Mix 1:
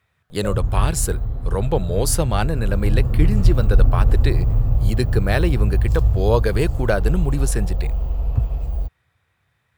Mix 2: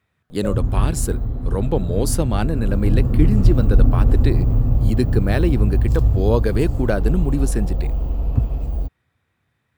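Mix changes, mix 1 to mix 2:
speech -4.0 dB; master: add bell 260 Hz +10.5 dB 1.1 oct

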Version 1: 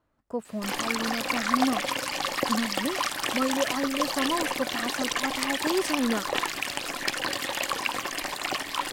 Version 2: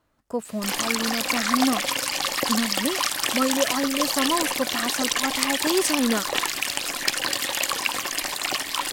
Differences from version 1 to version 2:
speech +3.5 dB; master: add high shelf 3100 Hz +9.5 dB

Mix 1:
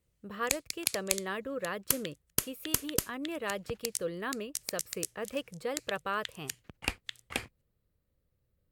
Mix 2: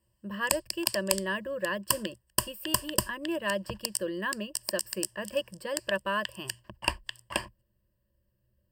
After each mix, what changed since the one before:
background: add band shelf 870 Hz +8.5 dB 1.1 oct; master: add ripple EQ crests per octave 1.3, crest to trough 16 dB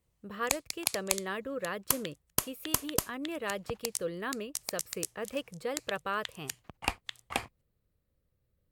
master: remove ripple EQ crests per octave 1.3, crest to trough 16 dB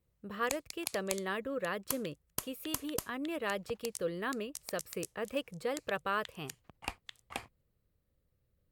background -8.0 dB

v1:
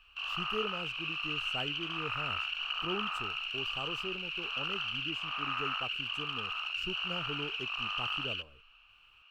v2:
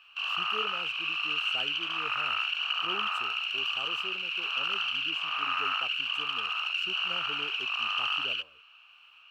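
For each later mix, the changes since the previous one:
background +5.5 dB; master: add HPF 490 Hz 6 dB/oct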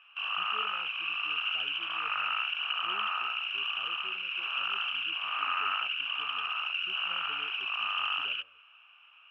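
speech -10.5 dB; master: add polynomial smoothing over 25 samples

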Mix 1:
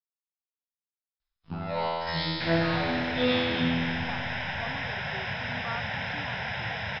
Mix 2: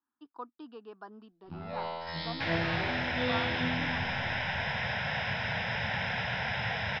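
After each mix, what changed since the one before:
speech: entry -2.35 s; first sound -7.5 dB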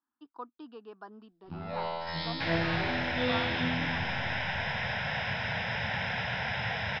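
first sound: send +9.5 dB

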